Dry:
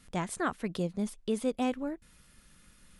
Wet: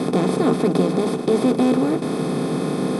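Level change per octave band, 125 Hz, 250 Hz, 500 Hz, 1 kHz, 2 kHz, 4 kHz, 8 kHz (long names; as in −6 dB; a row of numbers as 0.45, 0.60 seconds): +16.0, +15.5, +16.0, +11.5, +7.5, +13.0, +7.5 decibels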